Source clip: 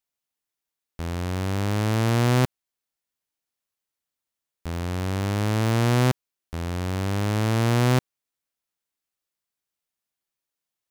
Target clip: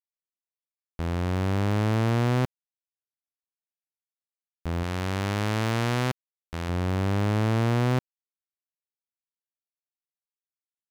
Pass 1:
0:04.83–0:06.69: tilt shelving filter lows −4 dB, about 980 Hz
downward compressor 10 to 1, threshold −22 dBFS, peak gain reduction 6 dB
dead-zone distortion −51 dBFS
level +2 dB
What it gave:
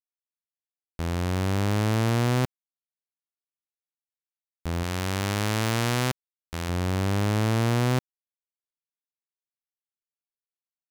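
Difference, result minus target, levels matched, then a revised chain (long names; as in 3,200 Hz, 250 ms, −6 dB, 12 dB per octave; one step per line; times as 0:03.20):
8,000 Hz band +7.0 dB
0:04.83–0:06.69: tilt shelving filter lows −4 dB, about 980 Hz
downward compressor 10 to 1, threshold −22 dBFS, peak gain reduction 6 dB
high-shelf EQ 4,700 Hz −10 dB
dead-zone distortion −51 dBFS
level +2 dB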